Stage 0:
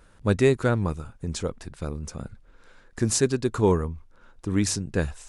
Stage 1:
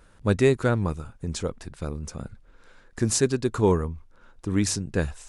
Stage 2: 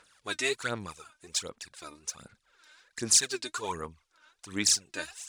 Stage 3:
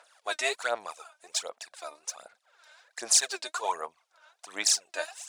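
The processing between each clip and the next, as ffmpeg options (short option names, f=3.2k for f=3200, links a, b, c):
-af anull
-af "bandpass=f=5.3k:t=q:w=0.64:csg=0,aphaser=in_gain=1:out_gain=1:delay=3.3:decay=0.7:speed=1.3:type=sinusoidal,volume=2.5dB"
-af "highpass=f=670:t=q:w=4.3"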